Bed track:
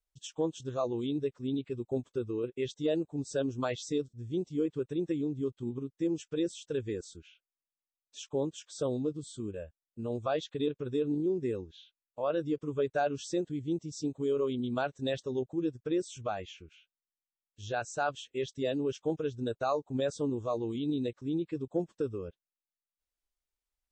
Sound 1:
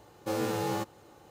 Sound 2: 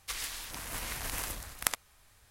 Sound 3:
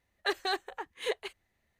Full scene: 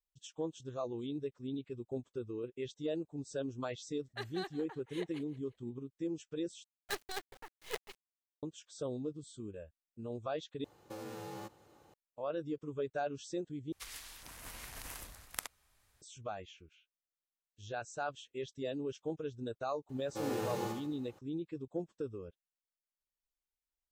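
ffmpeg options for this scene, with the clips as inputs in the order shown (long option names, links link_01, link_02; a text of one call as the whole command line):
ffmpeg -i bed.wav -i cue0.wav -i cue1.wav -i cue2.wav -filter_complex "[3:a]asplit=2[link_01][link_02];[1:a]asplit=2[link_03][link_04];[0:a]volume=-7dB[link_05];[link_01]aecho=1:1:174|348|522:0.141|0.048|0.0163[link_06];[link_02]acrusher=bits=5:dc=4:mix=0:aa=0.000001[link_07];[link_03]acompressor=threshold=-33dB:ratio=6:attack=3.2:release=140:knee=1:detection=peak[link_08];[link_04]aecho=1:1:71|142|213|284|355:0.562|0.225|0.09|0.036|0.0144[link_09];[link_05]asplit=4[link_10][link_11][link_12][link_13];[link_10]atrim=end=6.644[link_14];[link_07]atrim=end=1.79,asetpts=PTS-STARTPTS,volume=-8.5dB[link_15];[link_11]atrim=start=8.426:end=10.644[link_16];[link_08]atrim=end=1.3,asetpts=PTS-STARTPTS,volume=-8dB[link_17];[link_12]atrim=start=11.936:end=13.724[link_18];[2:a]atrim=end=2.3,asetpts=PTS-STARTPTS,volume=-10dB[link_19];[link_13]atrim=start=16.016[link_20];[link_06]atrim=end=1.79,asetpts=PTS-STARTPTS,volume=-12.5dB,afade=type=in:duration=0.004:curve=hsin,afade=type=out:start_time=1.786:duration=0.004:curve=hsin,adelay=3910[link_21];[link_09]atrim=end=1.3,asetpts=PTS-STARTPTS,volume=-8dB,afade=type=in:duration=0.004:curve=hsin,afade=type=out:start_time=1.296:duration=0.004:curve=hsin,adelay=19890[link_22];[link_14][link_15]acrossfade=duration=0.004:curve1=hsin:curve2=hsin[link_23];[link_23][link_16]acrossfade=duration=0.004:curve1=hsin:curve2=hsin[link_24];[link_24][link_17]acrossfade=duration=0.004:curve1=hsin:curve2=hsin[link_25];[link_25][link_18]acrossfade=duration=0.004:curve1=hsin:curve2=hsin[link_26];[link_26][link_19]acrossfade=duration=0.004:curve1=hsin:curve2=hsin[link_27];[link_27][link_20]acrossfade=duration=0.004:curve1=hsin:curve2=hsin[link_28];[link_28][link_21][link_22]amix=inputs=3:normalize=0" out.wav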